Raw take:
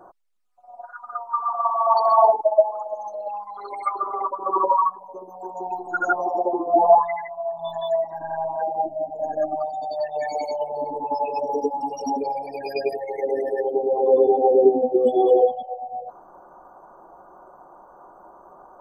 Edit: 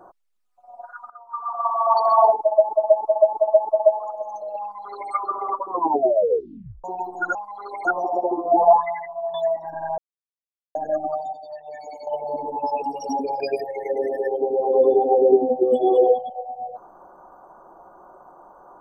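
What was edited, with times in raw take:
1.1–1.73 fade in, from -18.5 dB
2.37–2.69 loop, 5 plays
3.34–3.84 copy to 6.07
4.4 tape stop 1.16 s
7.56–7.82 cut
8.46–9.23 mute
9.81–10.55 gain -10.5 dB
11.3–11.79 cut
12.37–12.73 cut

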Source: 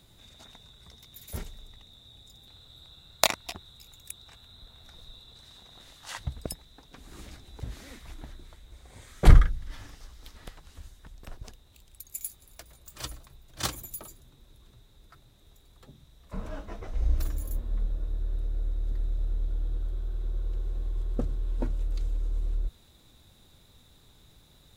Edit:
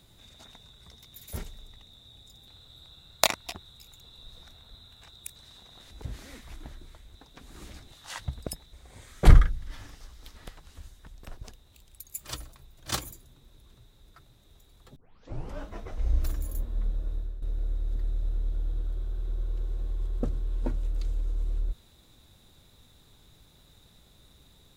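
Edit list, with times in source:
4.01–5.36 reverse
5.91–6.72 swap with 7.49–8.73
12.18–12.89 cut
13.84–14.09 cut
15.92 tape start 0.64 s
18.1–18.38 fade out, to -12.5 dB

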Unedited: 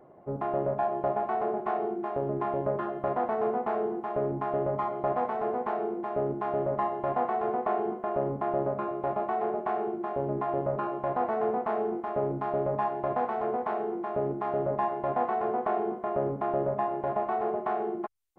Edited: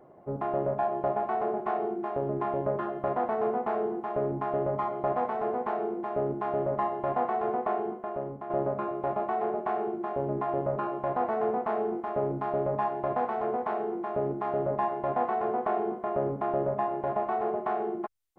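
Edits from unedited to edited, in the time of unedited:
7.58–8.5 fade out, to -10 dB

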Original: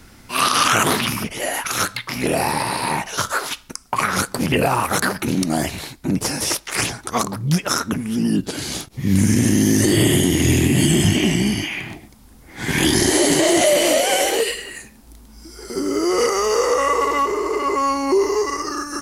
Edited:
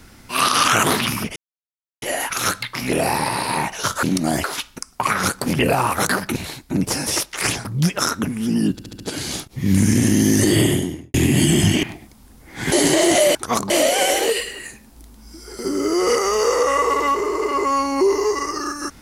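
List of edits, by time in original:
1.36 insert silence 0.66 s
5.29–5.7 move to 3.37
6.99–7.34 move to 13.81
8.41 stutter 0.07 s, 5 plays
9.96–10.55 studio fade out
11.24–11.84 cut
12.73–13.18 cut

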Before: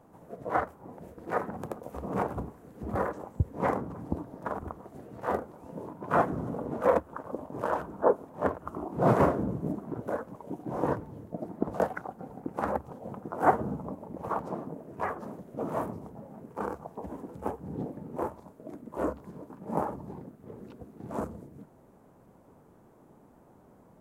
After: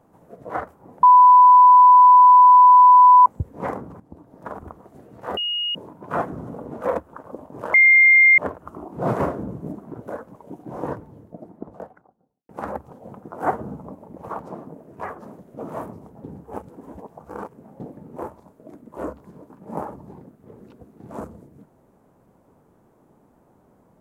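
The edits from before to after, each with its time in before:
1.03–3.26 bleep 996 Hz -6.5 dBFS
4–4.44 fade in quadratic, from -14 dB
5.37–5.75 bleep 2870 Hz -22 dBFS
7.74–8.38 bleep 2110 Hz -9 dBFS
10.78–12.49 studio fade out
16.24–17.8 reverse

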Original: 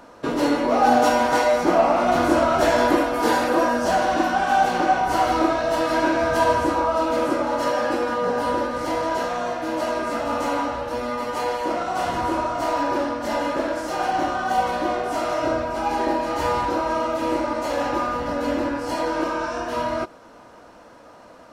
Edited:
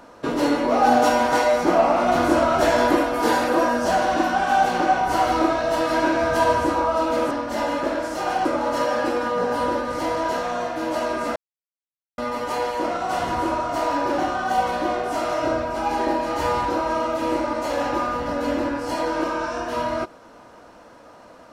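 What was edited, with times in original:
10.22–11.04 mute
13.04–14.18 move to 7.31

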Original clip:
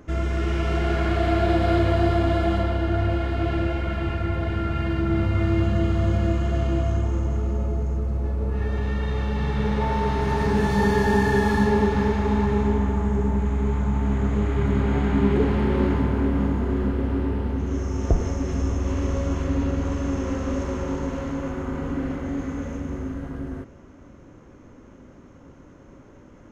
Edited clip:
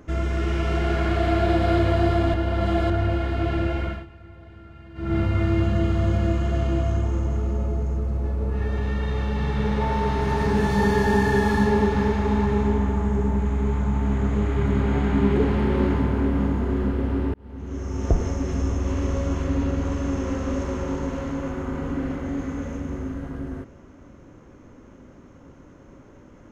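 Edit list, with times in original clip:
2.34–2.9 reverse
3.84–5.16 dip -19.5 dB, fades 0.22 s
17.34–18.09 fade in

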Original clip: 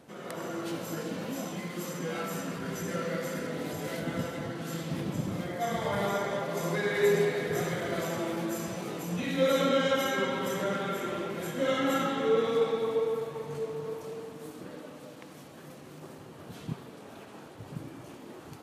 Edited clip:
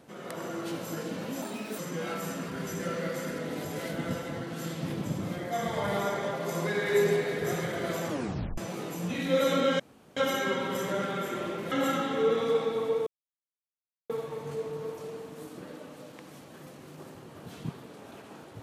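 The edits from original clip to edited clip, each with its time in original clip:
1.42–1.87 speed 123%
8.17 tape stop 0.49 s
9.88 insert room tone 0.37 s
11.43–11.78 cut
13.13 insert silence 1.03 s

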